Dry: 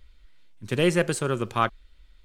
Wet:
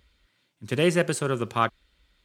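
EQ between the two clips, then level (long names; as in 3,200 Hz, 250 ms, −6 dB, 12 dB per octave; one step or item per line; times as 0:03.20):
high-pass filter 78 Hz 12 dB per octave
0.0 dB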